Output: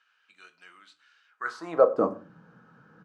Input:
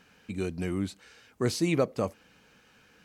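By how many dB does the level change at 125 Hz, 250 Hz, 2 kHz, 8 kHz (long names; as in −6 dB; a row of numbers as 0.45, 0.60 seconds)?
−16.0 dB, −6.5 dB, +1.5 dB, below −15 dB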